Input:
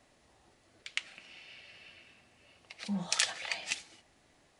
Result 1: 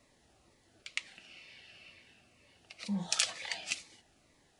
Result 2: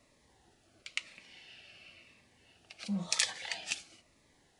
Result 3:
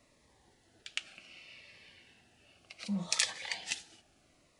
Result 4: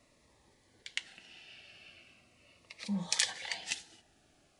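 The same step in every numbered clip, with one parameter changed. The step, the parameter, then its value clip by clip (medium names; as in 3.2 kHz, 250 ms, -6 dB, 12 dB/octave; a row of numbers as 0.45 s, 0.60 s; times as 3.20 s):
Shepard-style phaser, rate: 2.1 Hz, 0.98 Hz, 0.66 Hz, 0.39 Hz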